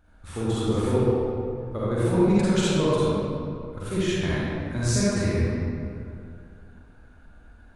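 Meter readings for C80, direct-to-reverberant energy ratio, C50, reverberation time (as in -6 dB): -4.5 dB, -10.0 dB, -7.5 dB, 2.4 s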